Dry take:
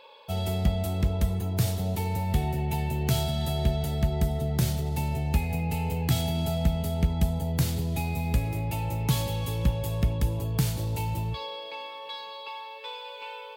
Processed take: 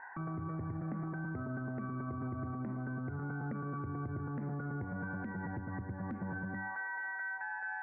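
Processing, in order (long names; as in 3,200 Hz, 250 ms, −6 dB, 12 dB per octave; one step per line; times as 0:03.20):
Butterworth low-pass 1,200 Hz 72 dB per octave
hum removal 55.63 Hz, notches 10
downward compressor 6 to 1, threshold −38 dBFS, peak gain reduction 18 dB
brickwall limiter −36.5 dBFS, peak gain reduction 11 dB
wrong playback speed 45 rpm record played at 78 rpm
level +4 dB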